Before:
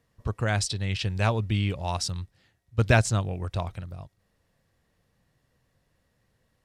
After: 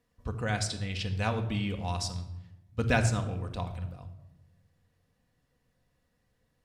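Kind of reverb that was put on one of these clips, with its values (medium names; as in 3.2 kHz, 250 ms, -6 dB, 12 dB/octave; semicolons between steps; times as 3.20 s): simulated room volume 3500 m³, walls furnished, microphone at 1.9 m; trim -5.5 dB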